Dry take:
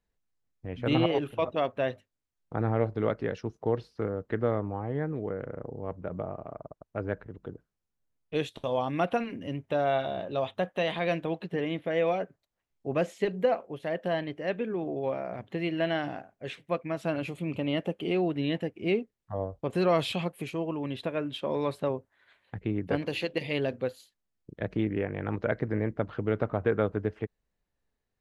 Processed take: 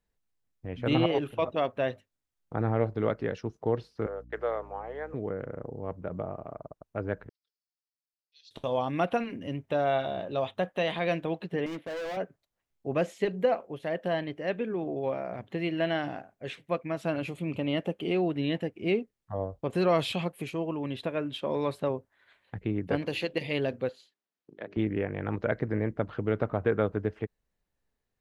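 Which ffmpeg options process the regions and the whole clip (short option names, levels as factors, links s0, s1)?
-filter_complex "[0:a]asettb=1/sr,asplit=3[s0][s1][s2];[s0]atrim=end=4.064[s3];[s1]atrim=start=4.06:end=5.14,asetpts=PTS-STARTPTS,afade=t=in:d=0.004:c=qsin,afade=t=out:st=1.076:d=0.004:c=qsin,agate=range=0.0501:threshold=0.00631:ratio=16:release=100:detection=peak,highpass=f=470:w=0.5412,highpass=f=470:w=1.3066,aeval=exprs='val(0)+0.00316*(sin(2*PI*60*n/s)+sin(2*PI*2*60*n/s)/2+sin(2*PI*3*60*n/s)/3+sin(2*PI*4*60*n/s)/4+sin(2*PI*5*60*n/s)/5)':c=same[s4];[s2]atrim=start=5.136[s5];[s3][s4]acrossfade=d=0.004:c1=hsin:c2=qsin[s6];[s6][s5]acrossfade=d=0.004:c1=qsin:c2=hsin,asettb=1/sr,asplit=3[s7][s8][s9];[s7]atrim=end=7.294[s10];[s8]atrim=start=7.29:end=8.51,asetpts=PTS-STARTPTS,afade=t=in:d=0.004:c=qsin,afade=t=out:st=1.216:d=0.004:c=qsin,asuperpass=centerf=4800:order=4:qfactor=4.5,aecho=1:1:4.4:0.53,atrim=end_sample=53802[s11];[s9]atrim=start=8.506[s12];[s10][s11]acrossfade=d=0.004:c1=hsin:c2=qsin[s13];[s13][s12]acrossfade=d=0.004:c1=qsin:c2=hsin,asettb=1/sr,asplit=3[s14][s15][s16];[s14]atrim=end=11.664[s17];[s15]atrim=start=11.66:end=12.17,asetpts=PTS-STARTPTS,afade=t=in:d=0.004:c=qsin,afade=t=out:st=0.506:d=0.004:c=qsin,highpass=190,agate=range=0.0224:threshold=0.00355:ratio=3:release=100:detection=peak,volume=47.3,asoftclip=hard,volume=0.0211[s18];[s16]atrim=start=12.166[s19];[s17][s18]acrossfade=d=0.004:c1=hsin:c2=qsin[s20];[s20][s19]acrossfade=d=0.004:c1=qsin:c2=hsin,asettb=1/sr,asplit=3[s21][s22][s23];[s21]atrim=end=23.894[s24];[s22]atrim=start=23.89:end=24.77,asetpts=PTS-STARTPTS,afade=t=in:d=0.004:c=qsin,afade=t=out:st=0.876:d=0.004:c=qsin,bandreject=f=50:t=h:w=6,bandreject=f=100:t=h:w=6,bandreject=f=150:t=h:w=6,bandreject=f=200:t=h:w=6,bandreject=f=250:t=h:w=6,bandreject=f=300:t=h:w=6,bandreject=f=350:t=h:w=6,bandreject=f=400:t=h:w=6,acompressor=threshold=0.01:ratio=1.5:attack=3.2:release=140:knee=1:detection=peak,highpass=270,lowpass=5000[s25];[s23]atrim=start=24.766[s26];[s24][s25]acrossfade=d=0.004:c1=hsin:c2=qsin[s27];[s27][s26]acrossfade=d=0.004:c1=qsin:c2=hsin"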